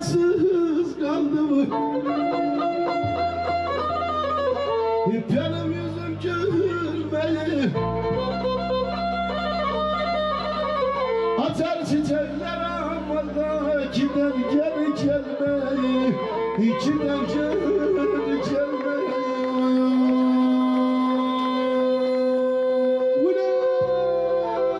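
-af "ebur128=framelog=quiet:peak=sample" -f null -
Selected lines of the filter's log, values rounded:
Integrated loudness:
  I:         -23.0 LUFS
  Threshold: -33.0 LUFS
Loudness range:
  LRA:         3.2 LU
  Threshold: -43.2 LUFS
  LRA low:   -24.5 LUFS
  LRA high:  -21.2 LUFS
Sample peak:
  Peak:      -12.1 dBFS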